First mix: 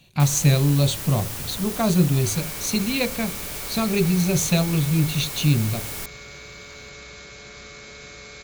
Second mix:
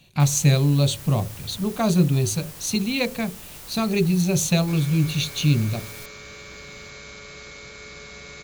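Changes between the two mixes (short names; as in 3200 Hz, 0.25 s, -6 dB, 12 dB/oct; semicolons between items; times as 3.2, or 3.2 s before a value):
first sound -8.5 dB; second sound: entry +2.45 s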